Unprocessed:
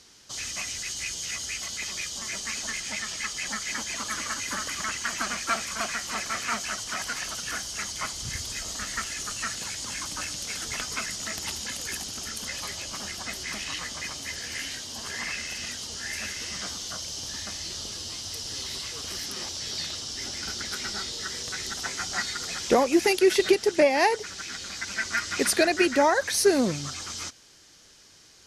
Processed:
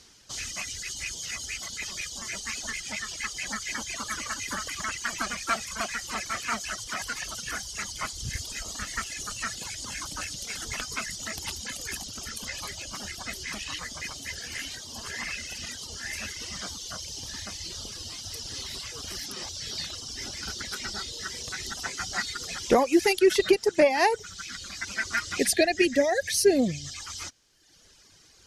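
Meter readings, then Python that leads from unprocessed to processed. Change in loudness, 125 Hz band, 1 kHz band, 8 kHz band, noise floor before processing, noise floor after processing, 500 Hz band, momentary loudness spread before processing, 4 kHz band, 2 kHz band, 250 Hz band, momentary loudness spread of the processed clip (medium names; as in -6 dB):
-1.5 dB, +0.5 dB, -1.5 dB, -2.5 dB, -53 dBFS, -54 dBFS, -0.5 dB, 11 LU, -2.5 dB, -1.5 dB, -0.5 dB, 13 LU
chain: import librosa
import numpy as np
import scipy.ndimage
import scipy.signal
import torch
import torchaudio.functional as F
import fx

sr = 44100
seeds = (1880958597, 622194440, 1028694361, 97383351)

y = fx.dereverb_blind(x, sr, rt60_s=1.1)
y = fx.spec_box(y, sr, start_s=25.38, length_s=1.57, low_hz=780.0, high_hz=1600.0, gain_db=-18)
y = fx.low_shelf(y, sr, hz=89.0, db=7.5)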